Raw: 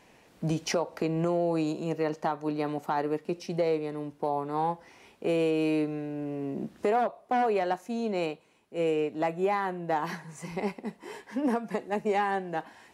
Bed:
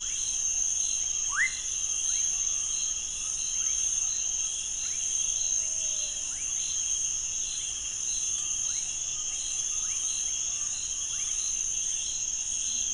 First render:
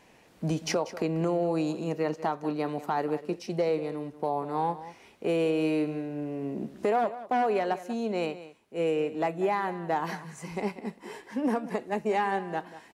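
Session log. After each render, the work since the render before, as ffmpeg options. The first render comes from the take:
ffmpeg -i in.wav -af "aecho=1:1:190:0.178" out.wav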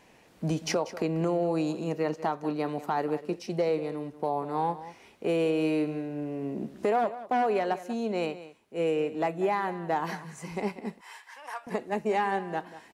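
ffmpeg -i in.wav -filter_complex "[0:a]asettb=1/sr,asplit=3[link_01][link_02][link_03];[link_01]atrim=end=11.014[link_04];[link_02]atrim=start=11.01:end=11.67,asetpts=PTS-STARTPTS,afade=type=in:duration=0.004:curve=qsin,afade=type=out:start_time=0.656:duration=0.004:curve=qsin,highpass=frequency=890:width=0.5412,highpass=frequency=890:width=1.3066[link_05];[link_03]atrim=start=11.666[link_06];[link_04][link_05]acrossfade=duration=0.004:curve1=hsin:curve2=qsin[link_07];[link_07][link_06]acrossfade=duration=0.004:curve1=qsin:curve2=hsin" out.wav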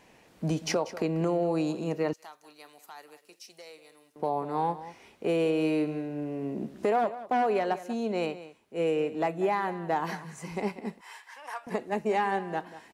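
ffmpeg -i in.wav -filter_complex "[0:a]asettb=1/sr,asplit=3[link_01][link_02][link_03];[link_01]atrim=end=2.134[link_04];[link_02]atrim=start=2.13:end=4.16,asetpts=PTS-STARTPTS,afade=type=in:duration=0.004:curve=qsin,afade=type=out:start_time=2.026:duration=0.004:curve=qsin,aderivative[link_05];[link_03]atrim=start=4.156[link_06];[link_04][link_05]acrossfade=duration=0.004:curve1=hsin:curve2=qsin[link_07];[link_07][link_06]acrossfade=duration=0.004:curve1=qsin:curve2=hsin" out.wav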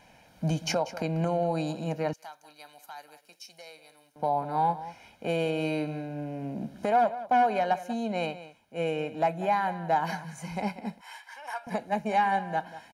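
ffmpeg -i in.wav -af "bandreject=frequency=7700:width=7.5,aecho=1:1:1.3:0.71" out.wav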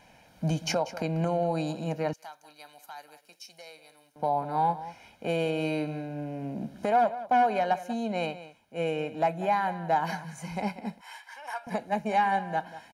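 ffmpeg -i in.wav -af anull out.wav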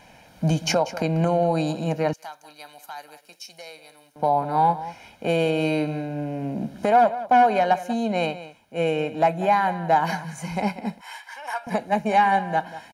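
ffmpeg -i in.wav -af "volume=6.5dB" out.wav

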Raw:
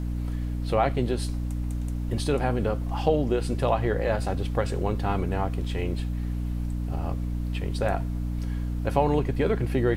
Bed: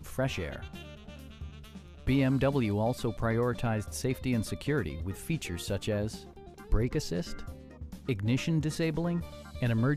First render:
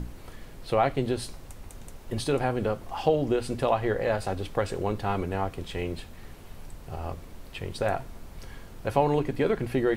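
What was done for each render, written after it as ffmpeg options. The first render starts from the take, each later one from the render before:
ffmpeg -i in.wav -af "bandreject=frequency=60:width_type=h:width=6,bandreject=frequency=120:width_type=h:width=6,bandreject=frequency=180:width_type=h:width=6,bandreject=frequency=240:width_type=h:width=6,bandreject=frequency=300:width_type=h:width=6" out.wav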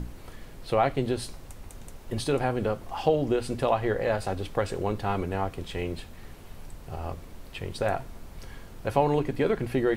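ffmpeg -i in.wav -af anull out.wav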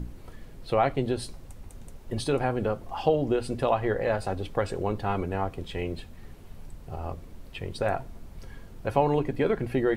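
ffmpeg -i in.wav -af "afftdn=noise_reduction=6:noise_floor=-45" out.wav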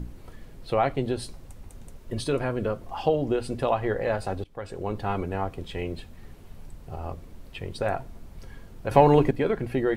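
ffmpeg -i in.wav -filter_complex "[0:a]asettb=1/sr,asplit=3[link_01][link_02][link_03];[link_01]atrim=end=1.984[link_04];[link_02]atrim=start=1.98:end=2.84,asetpts=PTS-STARTPTS,afade=type=in:duration=0.004:curve=qsin,afade=type=out:start_time=0.856:duration=0.004:curve=qsin,asuperstop=centerf=800:order=4:qfactor=5.7[link_05];[link_03]atrim=start=2.836[link_06];[link_04][link_05]acrossfade=duration=0.004:curve1=hsin:curve2=qsin[link_07];[link_07][link_06]acrossfade=duration=0.004:curve1=qsin:curve2=hsin,asettb=1/sr,asplit=3[link_08][link_09][link_10];[link_08]atrim=end=8.914[link_11];[link_09]atrim=start=8.91:end=9.31,asetpts=PTS-STARTPTS,afade=type=in:duration=0.004:curve=qsin,afade=type=out:start_time=0.396:duration=0.004:curve=qsin,acontrast=84[link_12];[link_10]atrim=start=9.306[link_13];[link_11][link_12]acrossfade=duration=0.004:curve1=hsin:curve2=qsin[link_14];[link_14][link_13]acrossfade=duration=0.004:curve1=qsin:curve2=hsin,asplit=2[link_15][link_16];[link_15]atrim=end=4.44,asetpts=PTS-STARTPTS,afade=type=out:start_time=4.436:duration=0.004:curve=hsin:silence=0.0668344[link_17];[link_16]atrim=start=4.44,asetpts=PTS-STARTPTS,afade=type=in:duration=0.56:silence=0.0668344[link_18];[link_17][link_18]concat=n=2:v=0:a=1" out.wav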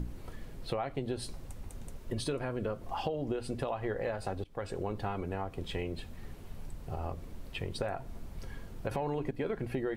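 ffmpeg -i in.wav -af "alimiter=limit=-15.5dB:level=0:latency=1:release=203,acompressor=threshold=-32dB:ratio=4" out.wav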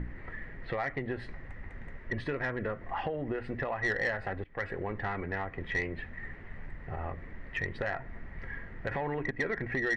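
ffmpeg -i in.wav -af "lowpass=frequency=1900:width_type=q:width=13,asoftclip=type=tanh:threshold=-22dB" out.wav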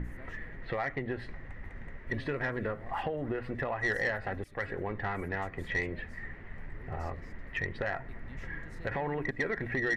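ffmpeg -i in.wav -i bed.wav -filter_complex "[1:a]volume=-23dB[link_01];[0:a][link_01]amix=inputs=2:normalize=0" out.wav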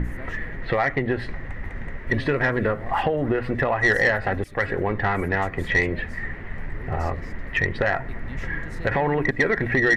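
ffmpeg -i in.wav -af "volume=11.5dB" out.wav

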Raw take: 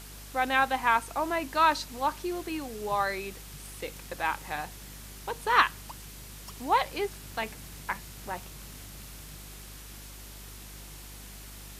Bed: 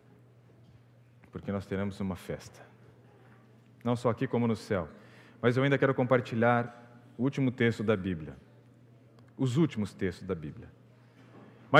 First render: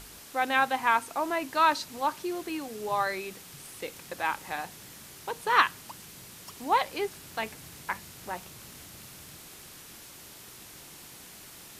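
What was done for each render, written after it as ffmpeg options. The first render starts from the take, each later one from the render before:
ffmpeg -i in.wav -af "bandreject=frequency=50:width_type=h:width=4,bandreject=frequency=100:width_type=h:width=4,bandreject=frequency=150:width_type=h:width=4,bandreject=frequency=200:width_type=h:width=4,bandreject=frequency=250:width_type=h:width=4" out.wav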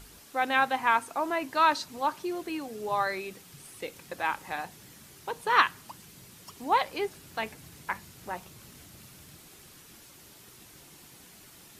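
ffmpeg -i in.wav -af "afftdn=noise_reduction=6:noise_floor=-49" out.wav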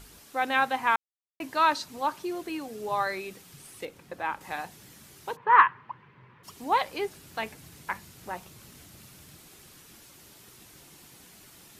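ffmpeg -i in.wav -filter_complex "[0:a]asettb=1/sr,asplit=3[link_01][link_02][link_03];[link_01]atrim=end=3.854[link_04];[link_02]atrim=start=3.85:end=4.41,asetpts=PTS-STARTPTS,afade=type=in:duration=0.004:curve=qsin,afade=type=out:start_time=0.556:duration=0.004:curve=qsin,highshelf=frequency=2600:gain=-10.5[link_05];[link_03]atrim=start=4.406[link_06];[link_04][link_05]acrossfade=duration=0.004:curve1=hsin:curve2=qsin[link_07];[link_07][link_06]acrossfade=duration=0.004:curve1=qsin:curve2=hsin,asplit=3[link_08][link_09][link_10];[link_08]afade=type=out:start_time=5.35:duration=0.02[link_11];[link_09]highpass=120,equalizer=frequency=130:width_type=q:width=4:gain=6,equalizer=frequency=190:width_type=q:width=4:gain=-8,equalizer=frequency=290:width_type=q:width=4:gain=-7,equalizer=frequency=680:width_type=q:width=4:gain=-8,equalizer=frequency=1000:width_type=q:width=4:gain=10,equalizer=frequency=1800:width_type=q:width=4:gain=3,lowpass=frequency=2300:width=0.5412,lowpass=frequency=2300:width=1.3066,afade=type=in:start_time=5.35:duration=0.02,afade=type=out:start_time=6.43:duration=0.02[link_12];[link_10]afade=type=in:start_time=6.43:duration=0.02[link_13];[link_11][link_12][link_13]amix=inputs=3:normalize=0,asplit=3[link_14][link_15][link_16];[link_14]atrim=end=0.96,asetpts=PTS-STARTPTS,afade=type=out:start_time=0.956:duration=0.004:curve=hsin[link_17];[link_15]atrim=start=0.96:end=1.4,asetpts=PTS-STARTPTS,volume=0[link_18];[link_16]atrim=start=1.4,asetpts=PTS-STARTPTS,afade=type=in:duration=0.004:curve=hsin[link_19];[link_17][link_18][link_19]concat=n=3:v=0:a=1" out.wav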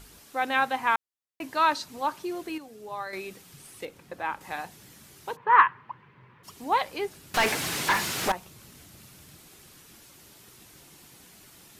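ffmpeg -i in.wav -filter_complex "[0:a]asettb=1/sr,asplit=3[link_01][link_02][link_03];[link_01]atrim=end=7.344[link_04];[link_02]atrim=start=7.34:end=8.32,asetpts=PTS-STARTPTS,afade=type=in:duration=0.004:curve=qsin,afade=type=out:start_time=0.976:duration=0.004:curve=qsin,asplit=2[link_05][link_06];[link_06]highpass=frequency=720:poles=1,volume=34dB,asoftclip=type=tanh:threshold=-14.5dB[link_07];[link_05][link_07]amix=inputs=2:normalize=0,lowpass=frequency=4400:poles=1,volume=-6dB[link_08];[link_03]atrim=start=8.316[link_09];[link_04][link_08]acrossfade=duration=0.004:curve1=hsin:curve2=qsin[link_10];[link_10][link_09]acrossfade=duration=0.004:curve1=qsin:curve2=hsin,asplit=3[link_11][link_12][link_13];[link_11]atrim=end=2.582[link_14];[link_12]atrim=start=2.578:end=3.132,asetpts=PTS-STARTPTS,volume=-7.5dB[link_15];[link_13]atrim=start=3.128[link_16];[link_14][link_15]acrossfade=duration=0.004:curve1=hsin:curve2=hsin[link_17];[link_17][link_16]acrossfade=duration=0.004:curve1=hsin:curve2=hsin" out.wav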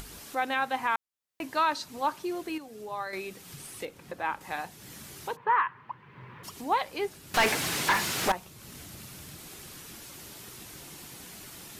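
ffmpeg -i in.wav -af "alimiter=limit=-16dB:level=0:latency=1:release=232,acompressor=mode=upward:threshold=-37dB:ratio=2.5" out.wav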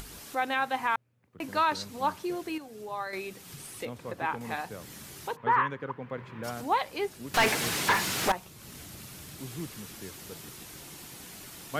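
ffmpeg -i in.wav -i bed.wav -filter_complex "[1:a]volume=-12.5dB[link_01];[0:a][link_01]amix=inputs=2:normalize=0" out.wav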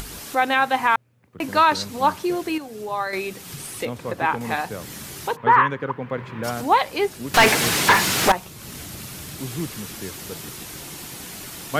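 ffmpeg -i in.wav -af "volume=9.5dB" out.wav

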